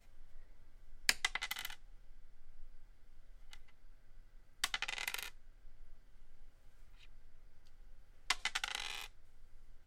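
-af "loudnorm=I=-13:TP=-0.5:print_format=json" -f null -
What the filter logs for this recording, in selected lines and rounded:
"input_i" : "-39.4",
"input_tp" : "-6.9",
"input_lra" : "4.4",
"input_thresh" : "-54.0",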